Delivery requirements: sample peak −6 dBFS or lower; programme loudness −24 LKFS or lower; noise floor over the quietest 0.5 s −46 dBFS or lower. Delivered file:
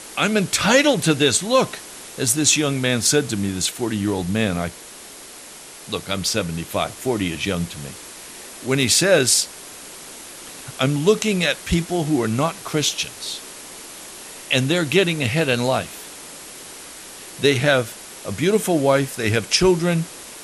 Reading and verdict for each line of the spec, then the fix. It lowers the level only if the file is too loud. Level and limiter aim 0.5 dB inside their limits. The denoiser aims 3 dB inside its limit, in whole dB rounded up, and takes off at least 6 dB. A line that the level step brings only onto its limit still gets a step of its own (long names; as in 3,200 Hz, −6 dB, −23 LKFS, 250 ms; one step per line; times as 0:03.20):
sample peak −4.0 dBFS: out of spec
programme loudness −19.5 LKFS: out of spec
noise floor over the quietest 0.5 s −40 dBFS: out of spec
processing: broadband denoise 6 dB, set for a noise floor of −40 dBFS
level −5 dB